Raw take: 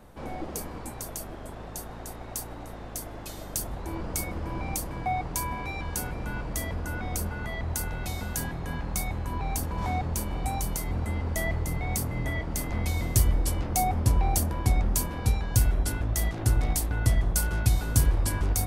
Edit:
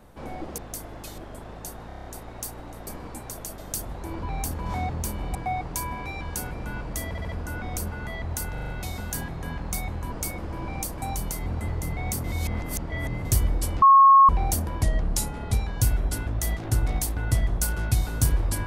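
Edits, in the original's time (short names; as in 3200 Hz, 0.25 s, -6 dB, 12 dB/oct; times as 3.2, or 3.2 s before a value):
0.58–1.29 swap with 2.8–3.4
1.98 stutter 0.03 s, 7 plays
4.05–4.95 swap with 9.35–10.47
6.68 stutter 0.07 s, 4 plays
7.92 stutter 0.04 s, 5 plays
11.13–11.52 cut
12.08–13.09 reverse
13.66–14.13 bleep 1090 Hz -10 dBFS
14.67–15.27 speed 86%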